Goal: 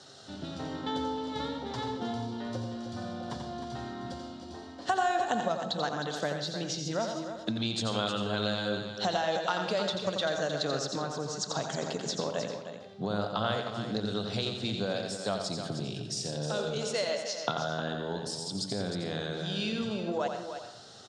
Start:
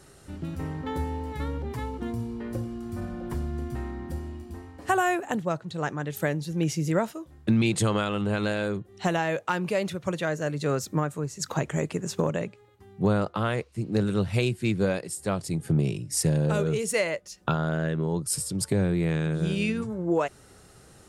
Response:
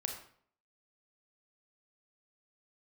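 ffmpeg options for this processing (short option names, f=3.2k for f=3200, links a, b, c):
-filter_complex "[0:a]highshelf=f=2.9k:t=q:w=3:g=6.5,acompressor=threshold=-28dB:ratio=6,highpass=f=120:w=0.5412,highpass=f=120:w=1.3066,equalizer=f=160:t=q:w=4:g=-9,equalizer=f=350:t=q:w=4:g=-6,equalizer=f=700:t=q:w=4:g=7,equalizer=f=1.5k:t=q:w=4:g=4,lowpass=f=6k:w=0.5412,lowpass=f=6k:w=1.3066,aecho=1:1:310:0.355,asplit=2[a][b];[1:a]atrim=start_sample=2205,adelay=87[c];[b][c]afir=irnorm=-1:irlink=0,volume=-5.5dB[d];[a][d]amix=inputs=2:normalize=0"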